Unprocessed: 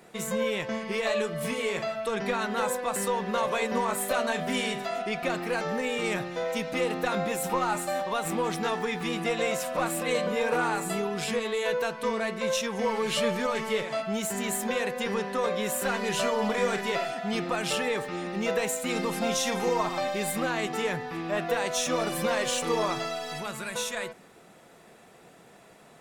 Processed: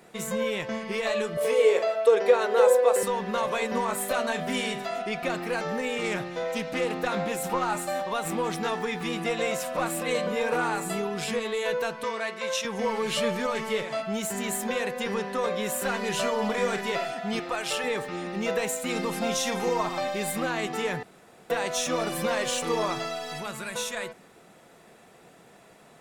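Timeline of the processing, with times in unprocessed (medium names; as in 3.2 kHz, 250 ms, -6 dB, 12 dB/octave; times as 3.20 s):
1.37–3.03 s: resonant high-pass 470 Hz, resonance Q 5.1
5.92–7.73 s: loudspeaker Doppler distortion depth 0.12 ms
12.04–12.65 s: frequency weighting A
17.39–17.84 s: peaking EQ 190 Hz -14 dB 1 oct
21.03–21.50 s: room tone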